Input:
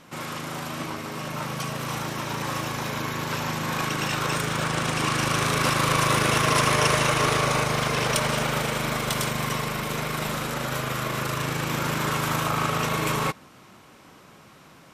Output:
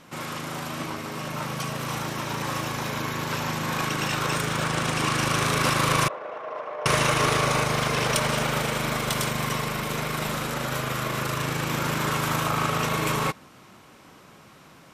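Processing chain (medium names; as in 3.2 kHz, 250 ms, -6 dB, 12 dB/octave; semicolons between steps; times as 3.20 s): 6.08–6.86 s: ladder band-pass 690 Hz, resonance 50%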